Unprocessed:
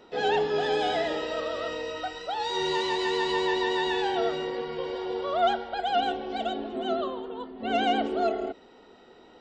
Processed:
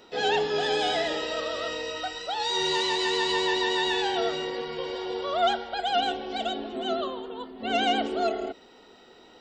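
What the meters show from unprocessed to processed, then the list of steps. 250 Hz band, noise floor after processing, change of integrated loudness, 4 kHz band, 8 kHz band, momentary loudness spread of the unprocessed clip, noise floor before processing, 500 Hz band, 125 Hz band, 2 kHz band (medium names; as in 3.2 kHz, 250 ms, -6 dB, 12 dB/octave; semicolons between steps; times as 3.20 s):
-1.0 dB, -53 dBFS, +1.0 dB, +5.0 dB, no reading, 8 LU, -54 dBFS, -0.5 dB, -1.0 dB, +2.5 dB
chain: treble shelf 2.7 kHz +10 dB; trim -1 dB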